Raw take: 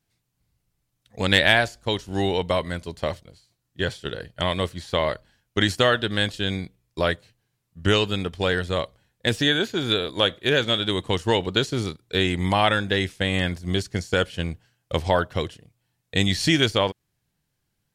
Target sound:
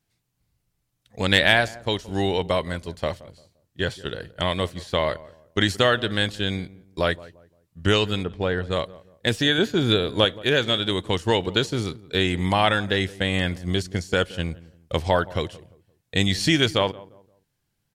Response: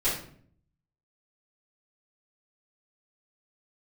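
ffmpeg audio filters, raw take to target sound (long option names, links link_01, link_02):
-filter_complex "[0:a]asplit=3[link_01][link_02][link_03];[link_01]afade=type=out:start_time=8.23:duration=0.02[link_04];[link_02]lowpass=frequency=1300:poles=1,afade=type=in:start_time=8.23:duration=0.02,afade=type=out:start_time=8.7:duration=0.02[link_05];[link_03]afade=type=in:start_time=8.7:duration=0.02[link_06];[link_04][link_05][link_06]amix=inputs=3:normalize=0,asettb=1/sr,asplit=3[link_07][link_08][link_09];[link_07]atrim=end=9.584[link_10];[link_08]atrim=start=9.58:end=10.25,asetpts=PTS-STARTPTS,afade=type=in:duration=0.004:curve=qsin,afade=type=out:start_time=0.666:duration=0.004:curve=qsin,lowshelf=frequency=410:gain=7.5[link_11];[link_09]atrim=start=10.246[link_12];[link_10][link_11]acrossfade=duration=0.004:curve1=hsin:curve2=qsin[link_13];[link_13][link_12]acrossfade=duration=0.004:curve1=qsin:curve2=hsin,asplit=2[link_14][link_15];[link_15]adelay=173,lowpass=frequency=970:poles=1,volume=-18.5dB,asplit=2[link_16][link_17];[link_17]adelay=173,lowpass=frequency=970:poles=1,volume=0.34,asplit=2[link_18][link_19];[link_19]adelay=173,lowpass=frequency=970:poles=1,volume=0.34[link_20];[link_14][link_16][link_18][link_20]amix=inputs=4:normalize=0"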